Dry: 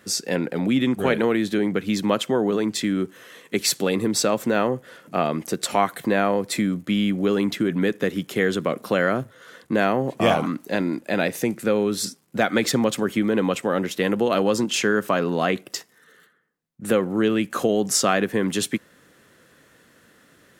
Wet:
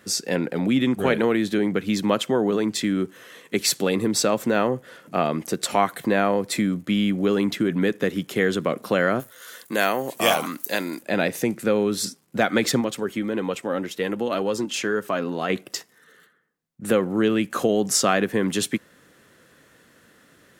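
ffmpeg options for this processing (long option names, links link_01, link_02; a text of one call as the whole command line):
ffmpeg -i in.wav -filter_complex "[0:a]asplit=3[link_01][link_02][link_03];[link_01]afade=type=out:start_time=9.19:duration=0.02[link_04];[link_02]aemphasis=mode=production:type=riaa,afade=type=in:start_time=9.19:duration=0.02,afade=type=out:start_time=11.02:duration=0.02[link_05];[link_03]afade=type=in:start_time=11.02:duration=0.02[link_06];[link_04][link_05][link_06]amix=inputs=3:normalize=0,asplit=3[link_07][link_08][link_09];[link_07]afade=type=out:start_time=12.8:duration=0.02[link_10];[link_08]flanger=delay=2.1:depth=1.7:regen=61:speed=2:shape=sinusoidal,afade=type=in:start_time=12.8:duration=0.02,afade=type=out:start_time=15.49:duration=0.02[link_11];[link_09]afade=type=in:start_time=15.49:duration=0.02[link_12];[link_10][link_11][link_12]amix=inputs=3:normalize=0" out.wav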